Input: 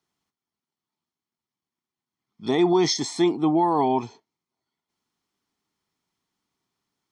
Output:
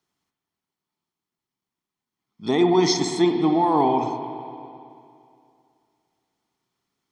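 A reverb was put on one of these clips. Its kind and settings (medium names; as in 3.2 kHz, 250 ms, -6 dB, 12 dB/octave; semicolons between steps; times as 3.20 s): spring tank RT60 2.5 s, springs 56/60 ms, chirp 55 ms, DRR 5 dB; trim +1 dB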